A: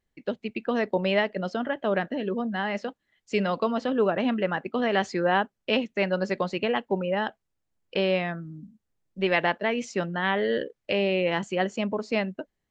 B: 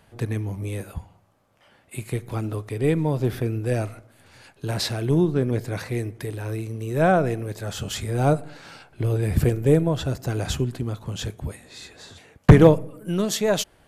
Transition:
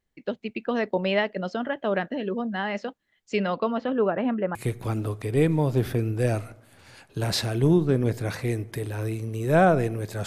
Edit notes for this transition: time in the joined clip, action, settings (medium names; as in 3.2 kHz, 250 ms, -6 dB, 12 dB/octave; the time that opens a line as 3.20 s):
A
3.36–4.55 s: low-pass 5.5 kHz -> 1.2 kHz
4.55 s: go over to B from 2.02 s